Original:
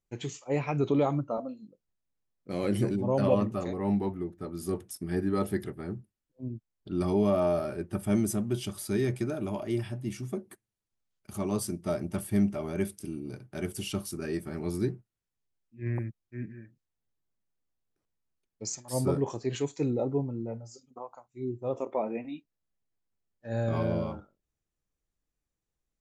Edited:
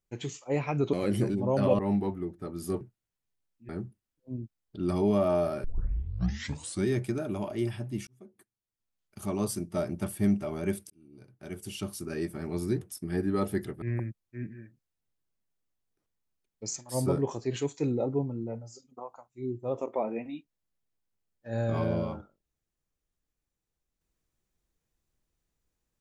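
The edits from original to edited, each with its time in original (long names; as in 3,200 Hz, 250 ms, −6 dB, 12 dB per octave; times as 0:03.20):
0:00.93–0:02.54: remove
0:03.40–0:03.78: remove
0:04.80–0:05.81: swap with 0:14.93–0:15.81
0:07.76: tape start 1.23 s
0:10.19–0:11.33: fade in
0:13.02–0:14.28: fade in linear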